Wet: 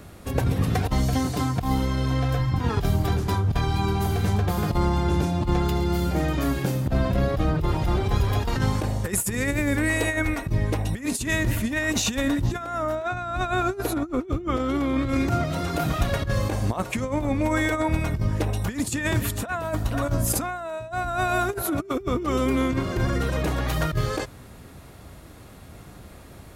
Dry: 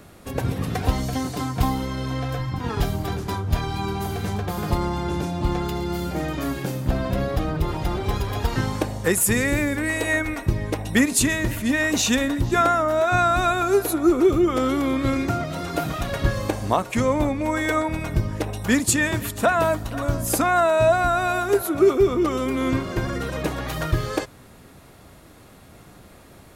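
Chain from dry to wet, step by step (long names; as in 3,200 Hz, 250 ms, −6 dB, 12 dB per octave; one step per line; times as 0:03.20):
0:12.95–0:15.09: high-shelf EQ 7,400 Hz −10.5 dB
compressor whose output falls as the input rises −23 dBFS, ratio −0.5
parametric band 63 Hz +6.5 dB 2 octaves
level −1.5 dB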